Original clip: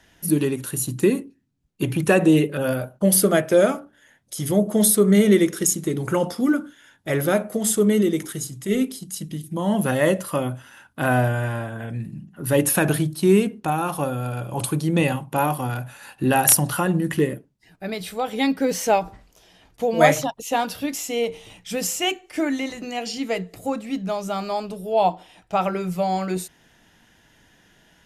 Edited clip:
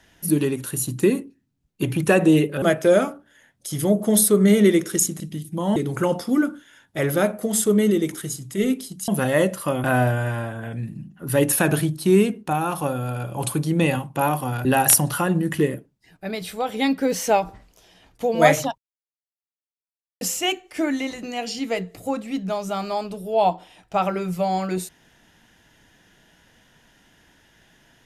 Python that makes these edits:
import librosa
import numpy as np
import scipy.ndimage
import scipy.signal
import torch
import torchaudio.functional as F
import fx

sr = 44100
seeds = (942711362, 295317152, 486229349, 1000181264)

y = fx.edit(x, sr, fx.cut(start_s=2.62, length_s=0.67),
    fx.move(start_s=9.19, length_s=0.56, to_s=5.87),
    fx.cut(start_s=10.51, length_s=0.5),
    fx.cut(start_s=15.82, length_s=0.42),
    fx.silence(start_s=20.37, length_s=1.43), tone=tone)